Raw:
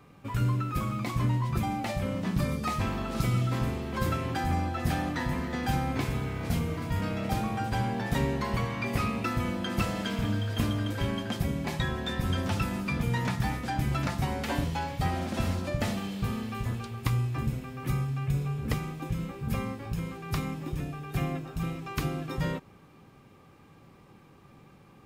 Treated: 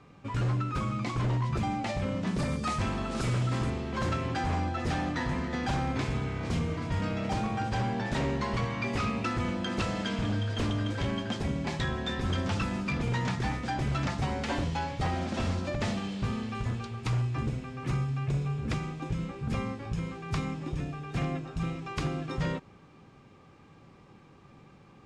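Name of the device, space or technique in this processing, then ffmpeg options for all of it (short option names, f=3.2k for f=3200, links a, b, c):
synthesiser wavefolder: -filter_complex "[0:a]asettb=1/sr,asplit=3[a][b][c];[a]atrim=end=2.274[d];[b]atrim=start=2.27:end=3.7,asetpts=PTS-STARTPTS,afade=t=in:d=0.004:c=qsin,afade=t=out:st=1.426:d=0.004:c=qsin,equalizer=f=9.5k:w=1.5:g=8.5[e];[c]atrim=start=3.696[f];[d][e]acrossfade=d=0.004:c1=hsin:c2=qsin[g];[g][f]acrossfade=d=0.004:c1=qsin:c2=hsin,aeval=exprs='0.0708*(abs(mod(val(0)/0.0708+3,4)-2)-1)':c=same,lowpass=f=7.7k:w=0.5412,lowpass=f=7.7k:w=1.3066"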